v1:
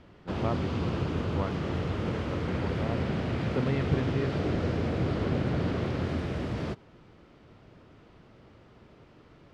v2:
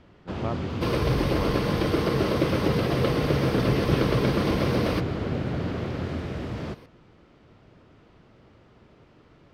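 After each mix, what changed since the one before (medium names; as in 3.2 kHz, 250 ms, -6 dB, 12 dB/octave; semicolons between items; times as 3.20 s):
second sound: unmuted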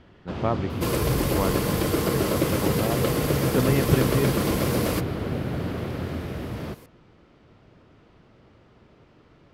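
speech +7.0 dB; second sound: remove Savitzky-Golay filter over 15 samples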